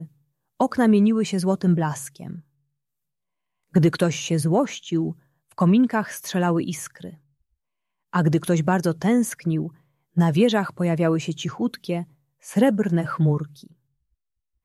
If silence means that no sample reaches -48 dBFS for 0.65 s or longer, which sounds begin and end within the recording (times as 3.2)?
3.73–7.17
8.13–13.72